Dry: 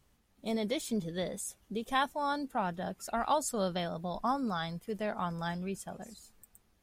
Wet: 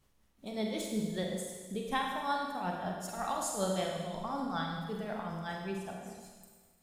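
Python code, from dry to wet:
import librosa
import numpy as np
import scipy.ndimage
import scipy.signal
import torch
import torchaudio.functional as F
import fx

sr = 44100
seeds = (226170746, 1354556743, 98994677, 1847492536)

y = fx.tremolo_shape(x, sr, shape='triangle', hz=5.3, depth_pct=85)
y = fx.rev_schroeder(y, sr, rt60_s=1.5, comb_ms=33, drr_db=0.0)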